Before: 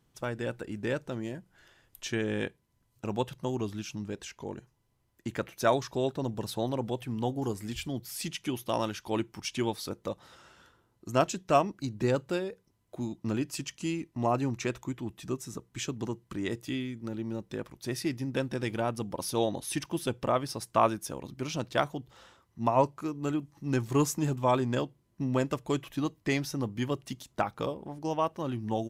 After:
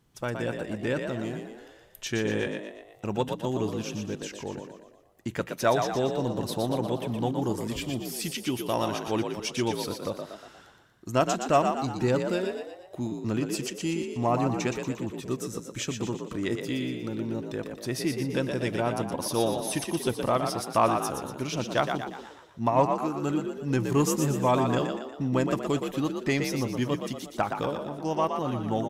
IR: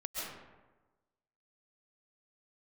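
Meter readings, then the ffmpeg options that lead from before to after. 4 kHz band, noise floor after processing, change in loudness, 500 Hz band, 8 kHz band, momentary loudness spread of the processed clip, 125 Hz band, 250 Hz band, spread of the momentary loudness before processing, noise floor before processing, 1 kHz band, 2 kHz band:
+3.5 dB, −53 dBFS, +3.5 dB, +3.5 dB, +4.0 dB, 11 LU, +3.0 dB, +3.5 dB, 11 LU, −72 dBFS, +3.5 dB, +3.5 dB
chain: -filter_complex "[0:a]asplit=2[link_01][link_02];[link_02]asoftclip=type=tanh:threshold=-24dB,volume=-8dB[link_03];[link_01][link_03]amix=inputs=2:normalize=0,asplit=7[link_04][link_05][link_06][link_07][link_08][link_09][link_10];[link_05]adelay=119,afreqshift=50,volume=-6dB[link_11];[link_06]adelay=238,afreqshift=100,volume=-12.2dB[link_12];[link_07]adelay=357,afreqshift=150,volume=-18.4dB[link_13];[link_08]adelay=476,afreqshift=200,volume=-24.6dB[link_14];[link_09]adelay=595,afreqshift=250,volume=-30.8dB[link_15];[link_10]adelay=714,afreqshift=300,volume=-37dB[link_16];[link_04][link_11][link_12][link_13][link_14][link_15][link_16]amix=inputs=7:normalize=0"

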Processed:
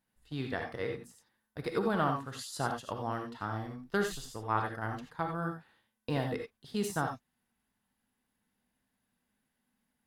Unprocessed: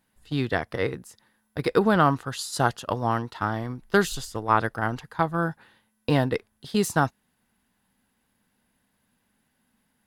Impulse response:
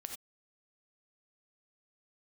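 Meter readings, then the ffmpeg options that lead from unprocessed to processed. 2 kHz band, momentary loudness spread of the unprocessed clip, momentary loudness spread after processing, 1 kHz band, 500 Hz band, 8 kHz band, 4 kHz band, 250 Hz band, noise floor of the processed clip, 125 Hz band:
−10.0 dB, 10 LU, 10 LU, −9.5 dB, −9.5 dB, −9.5 dB, −9.5 dB, −10.0 dB, −83 dBFS, −10.0 dB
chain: -filter_complex "[1:a]atrim=start_sample=2205[link_01];[0:a][link_01]afir=irnorm=-1:irlink=0,volume=-7dB"

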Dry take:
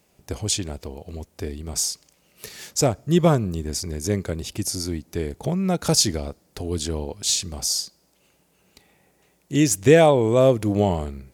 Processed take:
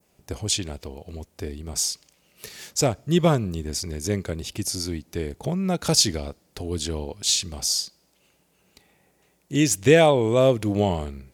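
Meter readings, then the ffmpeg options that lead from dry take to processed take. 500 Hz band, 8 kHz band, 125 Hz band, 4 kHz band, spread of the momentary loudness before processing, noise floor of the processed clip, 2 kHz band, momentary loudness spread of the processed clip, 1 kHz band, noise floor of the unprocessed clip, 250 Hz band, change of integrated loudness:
−2.0 dB, −1.0 dB, −2.0 dB, +1.0 dB, 19 LU, −65 dBFS, +1.0 dB, 18 LU, −1.5 dB, −64 dBFS, −2.0 dB, −1.5 dB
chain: -af "adynamicequalizer=threshold=0.0141:dfrequency=3100:dqfactor=0.9:tfrequency=3100:tqfactor=0.9:attack=5:release=100:ratio=0.375:range=2.5:mode=boostabove:tftype=bell,volume=-2dB"

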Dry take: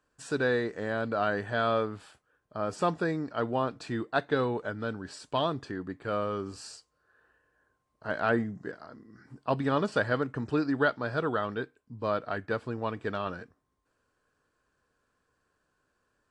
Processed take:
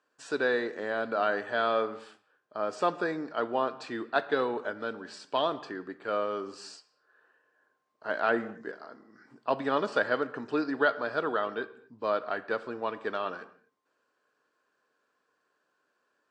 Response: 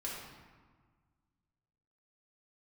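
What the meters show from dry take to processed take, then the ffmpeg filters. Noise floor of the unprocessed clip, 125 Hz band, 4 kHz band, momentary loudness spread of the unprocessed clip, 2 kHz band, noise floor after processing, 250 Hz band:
−77 dBFS, −14.0 dB, +0.5 dB, 13 LU, +1.0 dB, −77 dBFS, −3.5 dB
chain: -filter_complex "[0:a]highpass=330,lowpass=6200,asplit=2[link_01][link_02];[1:a]atrim=start_sample=2205,afade=type=out:start_time=0.31:duration=0.01,atrim=end_sample=14112[link_03];[link_02][link_03]afir=irnorm=-1:irlink=0,volume=-12.5dB[link_04];[link_01][link_04]amix=inputs=2:normalize=0"

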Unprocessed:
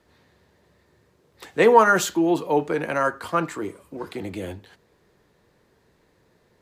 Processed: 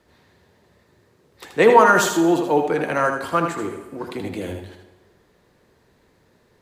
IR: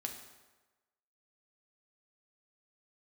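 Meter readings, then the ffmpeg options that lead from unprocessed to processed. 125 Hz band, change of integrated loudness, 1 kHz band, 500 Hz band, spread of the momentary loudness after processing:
+3.0 dB, +3.0 dB, +3.0 dB, +3.0 dB, 19 LU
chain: -filter_complex "[0:a]asplit=2[link_01][link_02];[1:a]atrim=start_sample=2205,adelay=78[link_03];[link_02][link_03]afir=irnorm=-1:irlink=0,volume=-4dB[link_04];[link_01][link_04]amix=inputs=2:normalize=0,volume=2dB"

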